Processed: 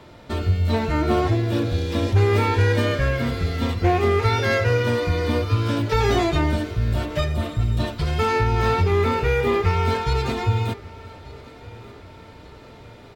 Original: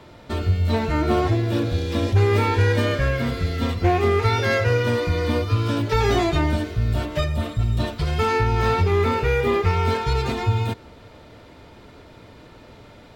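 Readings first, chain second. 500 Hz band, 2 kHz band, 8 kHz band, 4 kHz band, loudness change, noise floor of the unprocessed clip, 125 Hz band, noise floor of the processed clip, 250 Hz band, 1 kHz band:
0.0 dB, 0.0 dB, 0.0 dB, 0.0 dB, 0.0 dB, -46 dBFS, 0.0 dB, -44 dBFS, 0.0 dB, 0.0 dB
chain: feedback delay 1185 ms, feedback 51%, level -21.5 dB

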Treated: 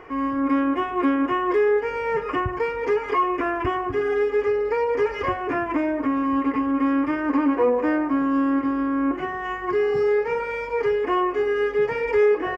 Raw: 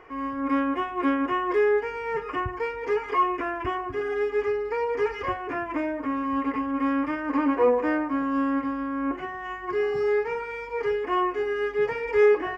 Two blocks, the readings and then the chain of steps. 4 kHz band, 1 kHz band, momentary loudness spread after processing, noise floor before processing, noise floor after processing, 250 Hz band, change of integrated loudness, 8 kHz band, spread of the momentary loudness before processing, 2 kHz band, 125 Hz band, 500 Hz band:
+2.5 dB, +2.5 dB, 5 LU, -36 dBFS, -31 dBFS, +5.0 dB, +3.5 dB, no reading, 8 LU, +2.5 dB, +5.5 dB, +3.0 dB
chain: peaking EQ 190 Hz +4 dB 2.5 oct; compression 2:1, threshold -26 dBFS, peak gain reduction 7.5 dB; on a send: frequency-shifting echo 108 ms, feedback 64%, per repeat +42 Hz, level -23.5 dB; on the sum: trim +5 dB

